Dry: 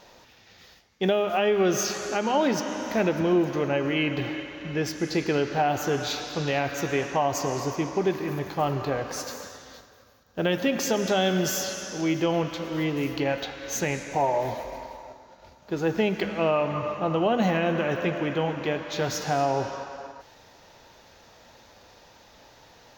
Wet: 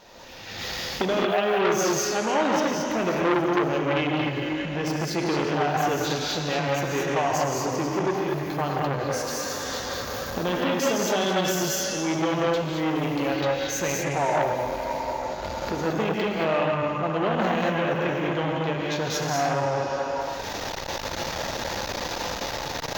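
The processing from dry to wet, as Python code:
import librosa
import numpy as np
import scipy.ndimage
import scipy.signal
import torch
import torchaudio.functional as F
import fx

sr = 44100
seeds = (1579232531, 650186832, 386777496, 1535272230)

y = fx.recorder_agc(x, sr, target_db=-21.5, rise_db_per_s=30.0, max_gain_db=30)
y = fx.rev_gated(y, sr, seeds[0], gate_ms=250, shape='rising', drr_db=-1.0)
y = fx.transformer_sat(y, sr, knee_hz=1900.0)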